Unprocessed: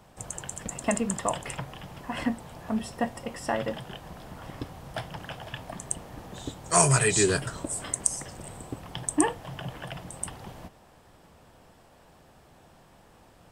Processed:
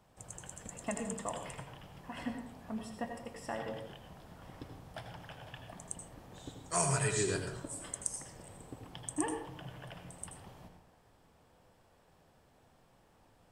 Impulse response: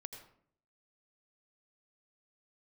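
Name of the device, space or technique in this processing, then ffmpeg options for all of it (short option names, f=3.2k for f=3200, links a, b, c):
bathroom: -filter_complex "[1:a]atrim=start_sample=2205[a];[0:a][a]afir=irnorm=-1:irlink=0,volume=-6dB"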